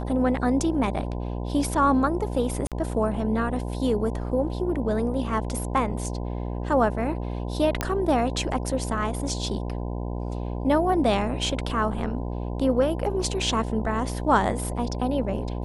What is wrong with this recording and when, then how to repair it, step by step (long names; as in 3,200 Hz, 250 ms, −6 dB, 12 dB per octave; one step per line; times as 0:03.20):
mains buzz 60 Hz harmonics 17 −30 dBFS
0:02.67–0:02.72: drop-out 47 ms
0:07.81: click −9 dBFS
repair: click removal
hum removal 60 Hz, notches 17
repair the gap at 0:02.67, 47 ms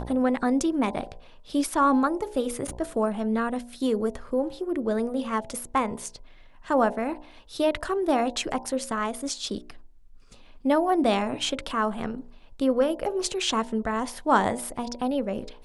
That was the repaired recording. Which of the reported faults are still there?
none of them is left